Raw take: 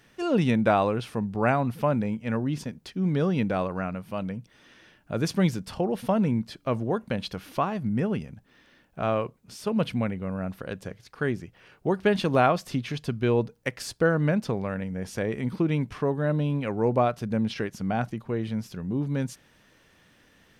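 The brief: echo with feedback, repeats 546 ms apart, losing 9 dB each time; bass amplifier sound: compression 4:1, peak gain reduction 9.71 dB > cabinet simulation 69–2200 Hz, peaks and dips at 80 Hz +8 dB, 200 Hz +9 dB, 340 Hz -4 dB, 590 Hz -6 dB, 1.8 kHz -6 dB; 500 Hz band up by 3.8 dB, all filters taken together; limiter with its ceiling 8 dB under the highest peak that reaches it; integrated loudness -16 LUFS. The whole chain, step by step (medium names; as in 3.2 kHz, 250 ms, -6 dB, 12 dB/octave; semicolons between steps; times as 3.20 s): peaking EQ 500 Hz +8 dB; peak limiter -13 dBFS; feedback delay 546 ms, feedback 35%, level -9 dB; compression 4:1, threshold -28 dBFS; cabinet simulation 69–2200 Hz, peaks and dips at 80 Hz +8 dB, 200 Hz +9 dB, 340 Hz -4 dB, 590 Hz -6 dB, 1.8 kHz -6 dB; trim +14.5 dB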